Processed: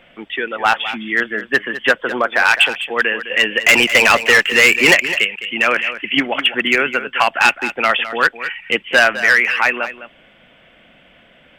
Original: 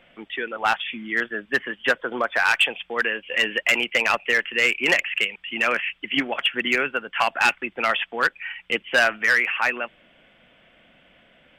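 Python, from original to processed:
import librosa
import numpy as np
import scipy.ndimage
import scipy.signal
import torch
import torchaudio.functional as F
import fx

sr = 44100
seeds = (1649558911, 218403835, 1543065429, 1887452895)

y = fx.leveller(x, sr, passes=2, at=(3.66, 4.95))
y = y + 10.0 ** (-13.0 / 20.0) * np.pad(y, (int(208 * sr / 1000.0), 0))[:len(y)]
y = y * 10.0 ** (6.5 / 20.0)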